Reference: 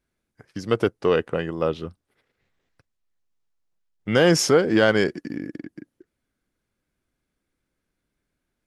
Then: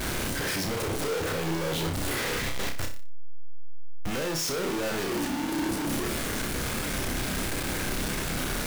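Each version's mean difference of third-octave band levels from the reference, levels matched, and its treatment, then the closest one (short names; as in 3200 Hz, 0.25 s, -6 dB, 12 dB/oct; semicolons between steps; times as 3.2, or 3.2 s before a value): 17.0 dB: infinite clipping; flutter echo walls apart 5.3 m, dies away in 0.35 s; gain -5 dB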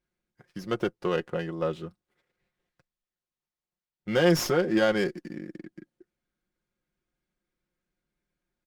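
2.5 dB: comb 5.6 ms, depth 60%; running maximum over 3 samples; gain -7 dB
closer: second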